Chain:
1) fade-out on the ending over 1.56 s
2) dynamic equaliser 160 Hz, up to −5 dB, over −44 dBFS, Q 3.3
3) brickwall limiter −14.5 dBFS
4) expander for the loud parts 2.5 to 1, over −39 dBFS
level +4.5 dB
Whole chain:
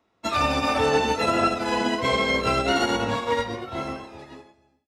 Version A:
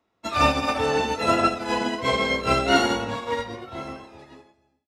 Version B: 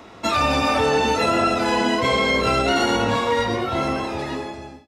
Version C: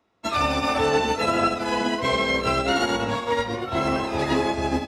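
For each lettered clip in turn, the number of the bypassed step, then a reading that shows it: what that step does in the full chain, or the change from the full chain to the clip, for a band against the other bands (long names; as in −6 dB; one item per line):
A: 3, change in crest factor +4.5 dB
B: 4, change in crest factor −3.5 dB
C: 1, change in momentary loudness spread −7 LU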